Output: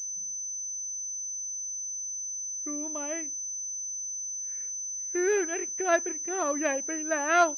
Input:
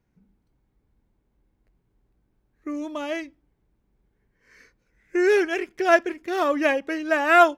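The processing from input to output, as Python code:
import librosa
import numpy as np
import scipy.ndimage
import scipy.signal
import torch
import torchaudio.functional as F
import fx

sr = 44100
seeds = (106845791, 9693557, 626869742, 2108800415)

y = fx.pwm(x, sr, carrier_hz=6100.0)
y = y * librosa.db_to_amplitude(-7.0)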